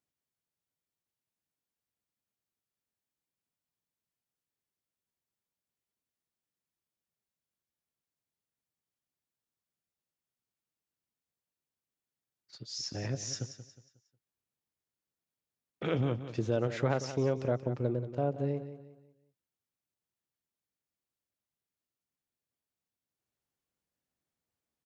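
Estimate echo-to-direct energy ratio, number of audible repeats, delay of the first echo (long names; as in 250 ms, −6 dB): −11.5 dB, 3, 181 ms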